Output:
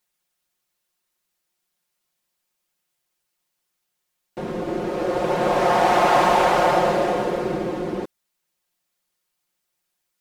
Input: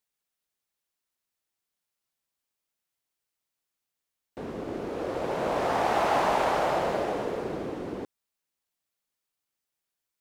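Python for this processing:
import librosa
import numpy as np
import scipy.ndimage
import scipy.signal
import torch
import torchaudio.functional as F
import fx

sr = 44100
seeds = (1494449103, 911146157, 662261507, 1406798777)

y = x + 0.8 * np.pad(x, (int(5.6 * sr / 1000.0), 0))[:len(x)]
y = y * librosa.db_to_amplitude(6.0)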